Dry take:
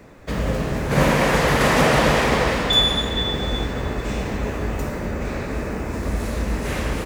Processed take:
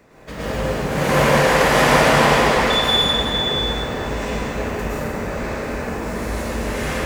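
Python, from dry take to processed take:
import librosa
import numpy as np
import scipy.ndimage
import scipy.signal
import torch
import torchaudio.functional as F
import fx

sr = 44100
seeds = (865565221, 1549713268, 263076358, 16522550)

y = fx.low_shelf(x, sr, hz=300.0, db=-6.0)
y = fx.rev_plate(y, sr, seeds[0], rt60_s=1.4, hf_ratio=0.8, predelay_ms=95, drr_db=-8.0)
y = F.gain(torch.from_numpy(y), -4.5).numpy()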